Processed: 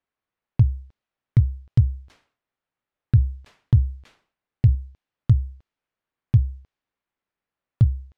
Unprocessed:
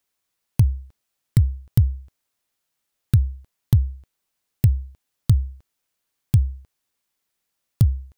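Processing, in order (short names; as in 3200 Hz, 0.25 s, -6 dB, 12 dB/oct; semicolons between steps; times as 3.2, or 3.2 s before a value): dynamic EQ 120 Hz, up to +5 dB, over -28 dBFS, Q 6.3; low-pass opened by the level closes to 2000 Hz, open at -12.5 dBFS; 1.82–4.75 sustainer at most 130 dB/s; gain -2 dB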